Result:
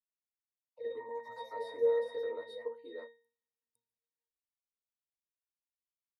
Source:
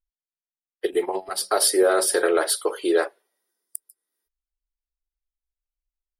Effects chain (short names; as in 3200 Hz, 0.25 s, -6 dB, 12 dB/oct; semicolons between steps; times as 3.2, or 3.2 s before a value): echoes that change speed 90 ms, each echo +3 st, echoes 3, each echo -6 dB; octave resonator A#, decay 0.38 s